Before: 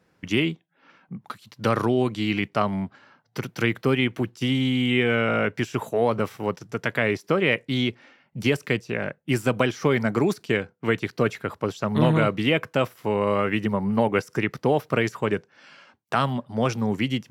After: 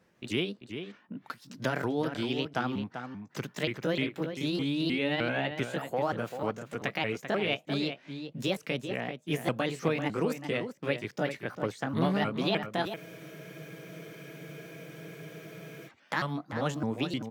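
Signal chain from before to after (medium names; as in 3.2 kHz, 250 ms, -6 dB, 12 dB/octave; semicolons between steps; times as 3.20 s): sawtooth pitch modulation +5.5 st, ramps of 306 ms; in parallel at +2 dB: compression, threshold -35 dBFS, peak gain reduction 19 dB; on the sum: echo from a far wall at 67 m, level -8 dB; spectral freeze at 12.99 s, 2.89 s; trim -9 dB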